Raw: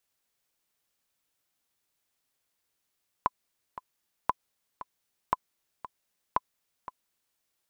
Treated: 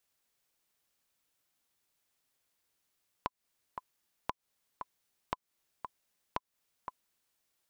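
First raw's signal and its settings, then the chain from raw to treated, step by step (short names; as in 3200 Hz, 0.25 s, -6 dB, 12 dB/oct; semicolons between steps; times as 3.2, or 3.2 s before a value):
metronome 116 bpm, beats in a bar 2, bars 4, 1010 Hz, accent 15 dB -10.5 dBFS
compressor 6:1, threshold -34 dBFS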